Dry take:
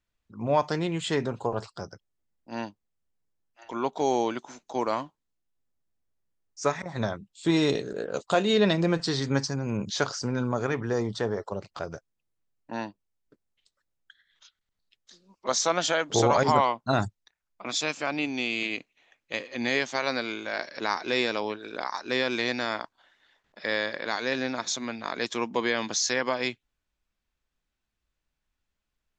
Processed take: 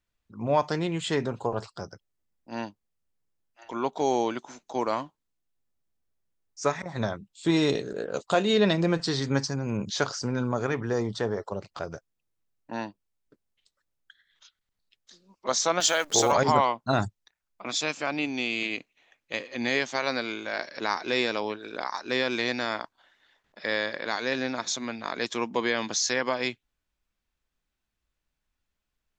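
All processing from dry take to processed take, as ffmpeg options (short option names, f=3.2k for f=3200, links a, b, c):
-filter_complex "[0:a]asettb=1/sr,asplit=3[a][b][c];[a]atrim=end=15.804[d];[b]atrim=start=15.8:end=16.32,asetpts=PTS-STARTPTS,afade=t=in:d=0.004:c=qsin,afade=t=out:st=0.516:d=0.004:c=qsin,aemphasis=mode=production:type=bsi,acrusher=bits=8:dc=4:mix=0:aa=0.000001[e];[c]atrim=start=16.316[f];[d][e]acrossfade=d=0.004:c1=hsin:c2=qsin[g];[g][f]acrossfade=d=0.004:c1=qsin:c2=hsin"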